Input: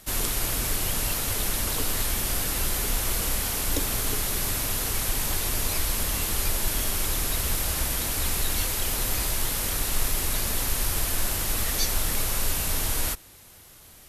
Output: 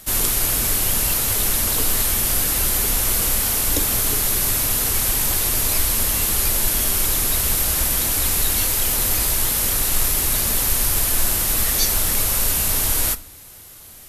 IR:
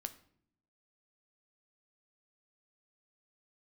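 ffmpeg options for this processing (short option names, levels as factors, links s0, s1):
-filter_complex "[0:a]asplit=2[s0][s1];[1:a]atrim=start_sample=2205,highshelf=f=6600:g=11[s2];[s1][s2]afir=irnorm=-1:irlink=0,volume=1.33[s3];[s0][s3]amix=inputs=2:normalize=0,volume=0.841"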